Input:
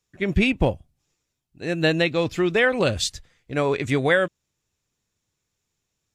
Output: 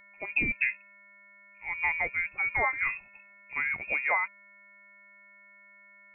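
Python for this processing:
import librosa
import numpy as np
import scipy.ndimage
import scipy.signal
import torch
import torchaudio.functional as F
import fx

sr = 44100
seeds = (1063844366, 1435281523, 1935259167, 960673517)

y = fx.dmg_buzz(x, sr, base_hz=400.0, harmonics=33, level_db=-41.0, tilt_db=-7, odd_only=False)
y = fx.freq_invert(y, sr, carrier_hz=2600)
y = fx.noise_reduce_blind(y, sr, reduce_db=7)
y = y * librosa.db_to_amplitude(-8.0)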